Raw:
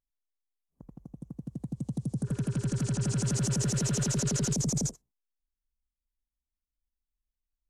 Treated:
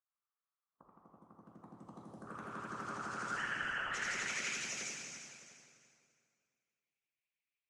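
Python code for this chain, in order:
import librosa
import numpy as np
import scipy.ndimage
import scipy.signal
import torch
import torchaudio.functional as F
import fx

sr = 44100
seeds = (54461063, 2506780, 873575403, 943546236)

y = fx.filter_sweep_bandpass(x, sr, from_hz=1200.0, to_hz=2400.0, start_s=2.94, end_s=4.42, q=7.0)
y = fx.freq_invert(y, sr, carrier_hz=3200, at=(3.36, 3.91))
y = fx.echo_feedback(y, sr, ms=345, feedback_pct=27, wet_db=-10.5)
y = fx.rev_plate(y, sr, seeds[0], rt60_s=2.3, hf_ratio=0.8, predelay_ms=0, drr_db=-5.5)
y = fx.hpss(y, sr, part='harmonic', gain_db=-13)
y = y * librosa.db_to_amplitude(14.0)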